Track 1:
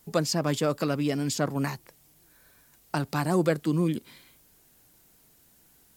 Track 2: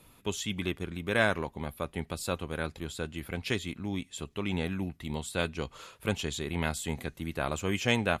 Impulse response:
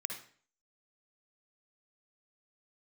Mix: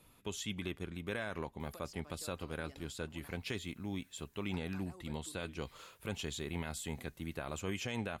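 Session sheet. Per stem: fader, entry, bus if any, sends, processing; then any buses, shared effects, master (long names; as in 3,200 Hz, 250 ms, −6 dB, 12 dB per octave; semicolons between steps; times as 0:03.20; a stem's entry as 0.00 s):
−1.5 dB, 1.60 s, no send, high-pass filter 630 Hz 6 dB per octave; downward compressor 10 to 1, threshold −39 dBFS, peak gain reduction 16 dB; automatic ducking −12 dB, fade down 2.00 s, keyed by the second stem
−6.0 dB, 0.00 s, no send, no processing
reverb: not used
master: brickwall limiter −27 dBFS, peak gain reduction 10.5 dB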